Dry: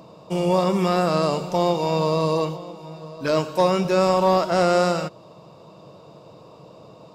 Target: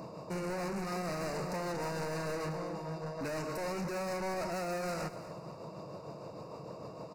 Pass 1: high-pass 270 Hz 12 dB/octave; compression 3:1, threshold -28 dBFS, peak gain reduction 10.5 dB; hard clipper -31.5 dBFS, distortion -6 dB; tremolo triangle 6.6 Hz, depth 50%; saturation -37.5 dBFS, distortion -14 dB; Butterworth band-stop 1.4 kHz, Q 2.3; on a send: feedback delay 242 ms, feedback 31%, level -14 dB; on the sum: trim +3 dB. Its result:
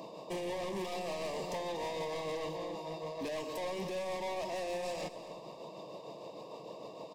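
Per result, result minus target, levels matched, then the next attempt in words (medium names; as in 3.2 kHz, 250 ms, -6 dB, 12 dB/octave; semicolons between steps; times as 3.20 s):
compression: peak gain reduction +5 dB; 4 kHz band +4.0 dB; 250 Hz band -3.0 dB
high-pass 270 Hz 12 dB/octave; compression 3:1, threshold -20 dBFS, peak gain reduction 5 dB; hard clipper -31.5 dBFS, distortion -3 dB; tremolo triangle 6.6 Hz, depth 50%; saturation -37.5 dBFS, distortion -15 dB; Butterworth band-stop 1.4 kHz, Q 2.3; on a send: feedback delay 242 ms, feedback 31%, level -14 dB; on the sum: trim +3 dB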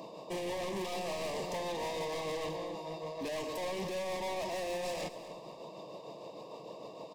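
4 kHz band +5.5 dB; 250 Hz band -3.5 dB
high-pass 270 Hz 12 dB/octave; compression 3:1, threshold -20 dBFS, peak gain reduction 5 dB; hard clipper -31.5 dBFS, distortion -3 dB; tremolo triangle 6.6 Hz, depth 50%; saturation -37.5 dBFS, distortion -15 dB; Butterworth band-stop 3.3 kHz, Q 2.3; on a send: feedback delay 242 ms, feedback 31%, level -14 dB; on the sum: trim +3 dB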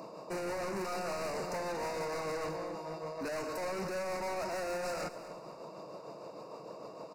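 250 Hz band -3.5 dB
compression 3:1, threshold -20 dBFS, peak gain reduction 5.5 dB; hard clipper -31.5 dBFS, distortion -4 dB; tremolo triangle 6.6 Hz, depth 50%; saturation -37.5 dBFS, distortion -15 dB; Butterworth band-stop 3.3 kHz, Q 2.3; on a send: feedback delay 242 ms, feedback 31%, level -14 dB; on the sum: trim +3 dB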